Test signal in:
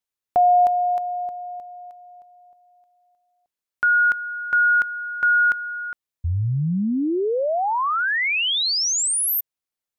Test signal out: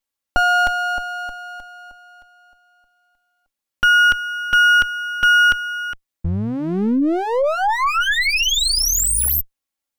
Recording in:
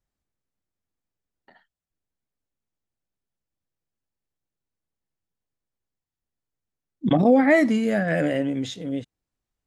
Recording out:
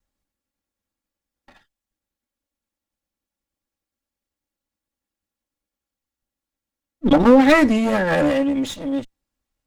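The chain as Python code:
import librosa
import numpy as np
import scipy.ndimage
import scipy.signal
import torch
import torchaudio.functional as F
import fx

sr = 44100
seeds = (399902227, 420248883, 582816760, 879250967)

y = fx.lower_of_two(x, sr, delay_ms=3.6)
y = y * librosa.db_to_amplitude(5.5)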